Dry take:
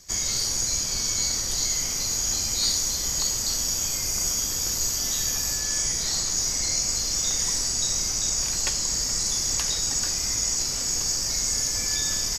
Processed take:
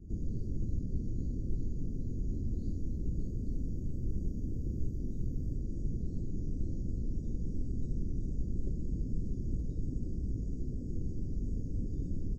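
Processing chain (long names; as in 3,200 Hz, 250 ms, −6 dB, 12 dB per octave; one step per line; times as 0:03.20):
inverse Chebyshev low-pass filter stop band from 870 Hz, stop band 50 dB
backwards echo 86 ms −14 dB
level +3.5 dB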